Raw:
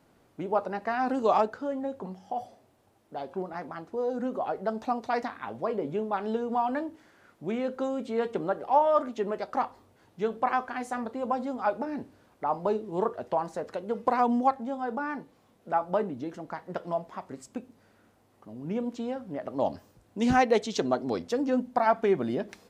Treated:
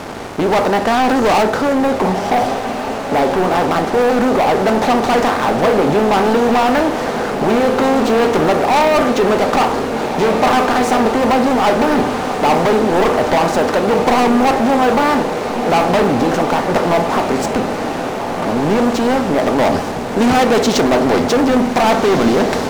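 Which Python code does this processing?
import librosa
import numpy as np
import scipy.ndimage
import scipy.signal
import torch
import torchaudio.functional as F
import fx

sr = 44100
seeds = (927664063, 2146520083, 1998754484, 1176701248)

y = fx.bin_compress(x, sr, power=0.6)
y = fx.leveller(y, sr, passes=5)
y = fx.echo_diffused(y, sr, ms=1584, feedback_pct=67, wet_db=-8.5)
y = F.gain(torch.from_numpy(y), -1.5).numpy()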